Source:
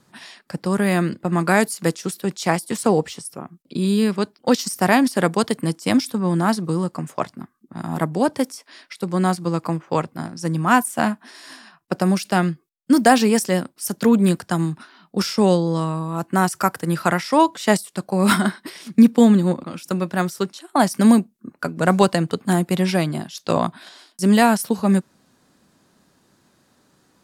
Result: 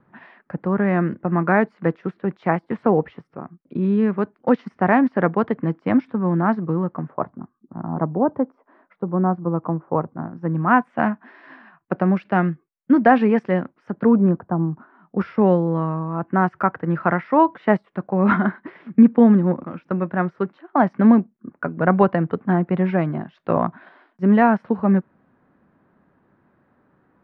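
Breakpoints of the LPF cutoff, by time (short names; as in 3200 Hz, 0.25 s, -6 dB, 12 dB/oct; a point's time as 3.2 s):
LPF 24 dB/oct
6.88 s 1900 Hz
7.31 s 1200 Hz
10.03 s 1200 Hz
10.87 s 2100 Hz
13.7 s 2100 Hz
14.62 s 1000 Hz
15.2 s 1900 Hz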